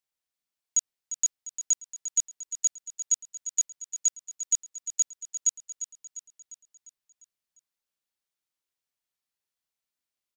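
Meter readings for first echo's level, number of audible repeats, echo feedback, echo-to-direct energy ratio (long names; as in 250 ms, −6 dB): −11.0 dB, 5, 53%, −9.5 dB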